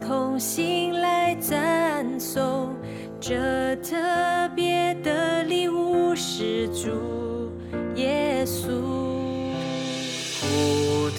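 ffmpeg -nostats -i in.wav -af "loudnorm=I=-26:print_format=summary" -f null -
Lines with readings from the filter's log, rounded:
Input Integrated:    -25.1 LUFS
Input True Peak:     -11.3 dBTP
Input LRA:             2.1 LU
Input Threshold:     -35.1 LUFS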